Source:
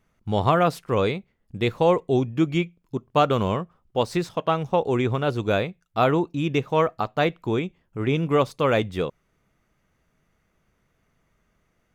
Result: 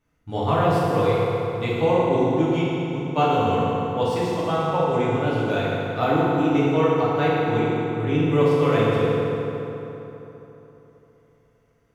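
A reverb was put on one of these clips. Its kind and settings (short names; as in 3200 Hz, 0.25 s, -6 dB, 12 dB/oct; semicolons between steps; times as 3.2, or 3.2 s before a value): FDN reverb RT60 3.5 s, high-frequency decay 0.65×, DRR -8.5 dB; gain -8 dB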